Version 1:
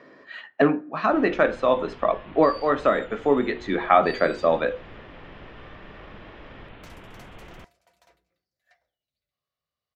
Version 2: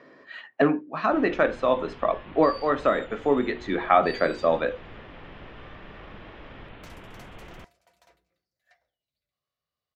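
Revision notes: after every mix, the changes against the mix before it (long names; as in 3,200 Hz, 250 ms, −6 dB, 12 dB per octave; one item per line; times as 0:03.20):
speech: send off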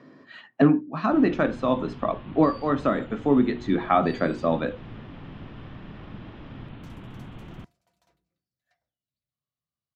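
second sound −7.0 dB
master: add octave-band graphic EQ 125/250/500/2,000 Hz +9/+7/−5/−5 dB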